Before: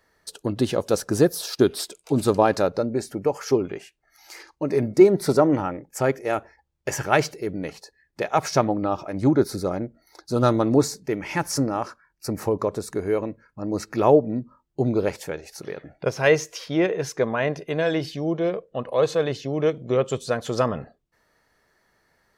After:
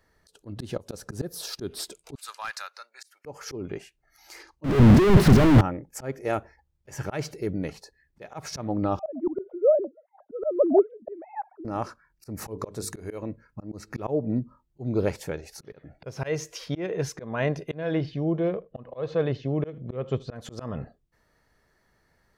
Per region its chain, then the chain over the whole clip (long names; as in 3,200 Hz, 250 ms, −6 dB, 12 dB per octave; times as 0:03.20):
0:02.15–0:03.25: high-pass filter 1,300 Hz 24 dB per octave + hard clipping −22.5 dBFS
0:04.64–0:05.61: sign of each sample alone + bass and treble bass +8 dB, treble −12 dB + highs frequency-modulated by the lows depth 0.39 ms
0:08.99–0:11.65: three sine waves on the formant tracks + dynamic equaliser 240 Hz, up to −5 dB, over −27 dBFS, Q 0.76 + low-pass with resonance 630 Hz, resonance Q 6
0:12.37–0:13.23: high-shelf EQ 2,100 Hz +8 dB + mains-hum notches 50/100/150/200/250/300/350/400/450 Hz
0:17.74–0:20.36: high-frequency loss of the air 230 metres + single-tap delay 79 ms −24 dB
whole clip: volume swells 233 ms; low-shelf EQ 190 Hz +10 dB; level −3.5 dB